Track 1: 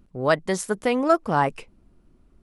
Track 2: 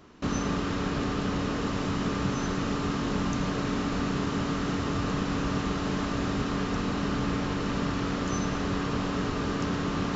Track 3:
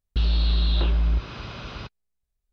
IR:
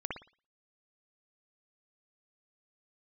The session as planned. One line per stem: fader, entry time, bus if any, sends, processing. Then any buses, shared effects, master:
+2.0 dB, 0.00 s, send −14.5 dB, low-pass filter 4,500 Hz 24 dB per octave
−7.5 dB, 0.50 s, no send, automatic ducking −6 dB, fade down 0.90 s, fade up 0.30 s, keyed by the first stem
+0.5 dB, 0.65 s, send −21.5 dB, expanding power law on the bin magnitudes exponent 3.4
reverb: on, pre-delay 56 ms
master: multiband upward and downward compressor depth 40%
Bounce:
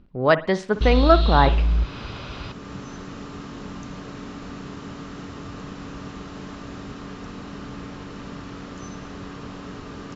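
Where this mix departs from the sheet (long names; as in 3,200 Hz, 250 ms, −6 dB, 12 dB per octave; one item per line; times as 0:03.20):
stem 3: missing expanding power law on the bin magnitudes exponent 3.4
master: missing multiband upward and downward compressor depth 40%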